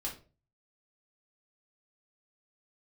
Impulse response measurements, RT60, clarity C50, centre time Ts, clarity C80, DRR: 0.35 s, 9.5 dB, 21 ms, 16.0 dB, -3.0 dB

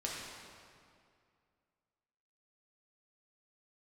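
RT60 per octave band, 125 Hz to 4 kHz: 2.5, 2.4, 2.3, 2.2, 2.0, 1.7 s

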